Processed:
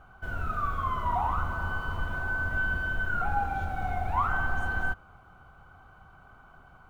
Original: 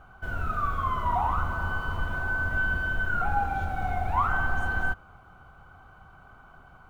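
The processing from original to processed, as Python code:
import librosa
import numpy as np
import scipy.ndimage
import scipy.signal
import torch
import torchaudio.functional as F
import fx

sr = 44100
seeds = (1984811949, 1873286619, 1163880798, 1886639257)

y = x * 10.0 ** (-2.0 / 20.0)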